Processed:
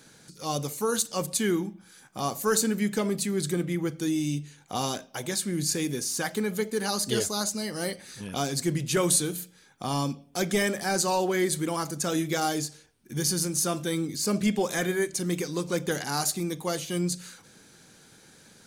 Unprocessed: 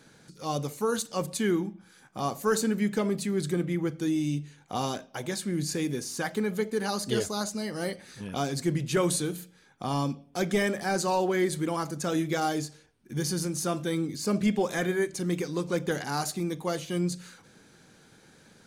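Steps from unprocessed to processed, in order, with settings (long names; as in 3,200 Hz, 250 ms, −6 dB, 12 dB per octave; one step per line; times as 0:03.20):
high-shelf EQ 4,100 Hz +9 dB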